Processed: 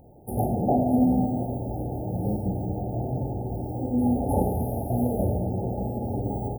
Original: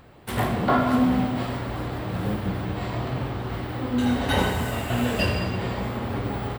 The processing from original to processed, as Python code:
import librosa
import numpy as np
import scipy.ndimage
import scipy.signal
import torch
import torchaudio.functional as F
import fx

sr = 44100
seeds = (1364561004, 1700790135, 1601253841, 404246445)

y = fx.brickwall_bandstop(x, sr, low_hz=890.0, high_hz=9400.0)